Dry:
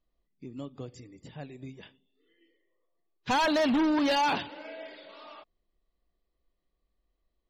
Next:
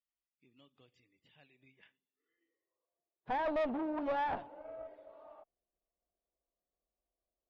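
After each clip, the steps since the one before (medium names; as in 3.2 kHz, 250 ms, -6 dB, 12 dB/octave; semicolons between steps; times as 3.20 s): band-pass sweep 2.9 kHz -> 690 Hz, 1.53–3.03 s; RIAA curve playback; valve stage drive 29 dB, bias 0.7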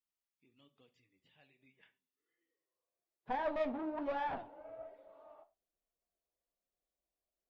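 flange 1.2 Hz, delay 3.6 ms, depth 8.8 ms, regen +48%; on a send at -14 dB: reverberation, pre-delay 17 ms; on the sum: trim +1 dB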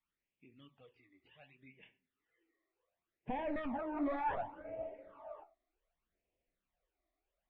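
low-pass 3 kHz 24 dB/octave; peak limiter -36.5 dBFS, peak gain reduction 10.5 dB; phase shifter stages 12, 0.67 Hz, lowest notch 150–1400 Hz; trim +10 dB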